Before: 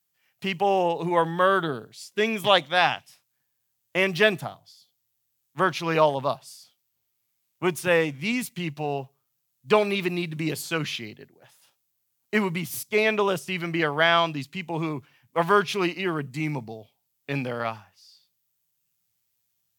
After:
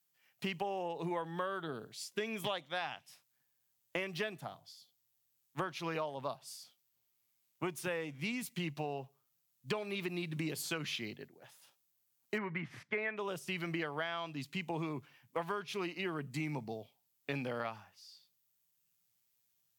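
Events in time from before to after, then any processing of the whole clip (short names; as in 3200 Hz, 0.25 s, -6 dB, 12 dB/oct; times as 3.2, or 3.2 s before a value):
12.38–13.17 synth low-pass 1800 Hz, resonance Q 3.4
whole clip: HPF 110 Hz; compressor 12:1, threshold -31 dBFS; gain -3 dB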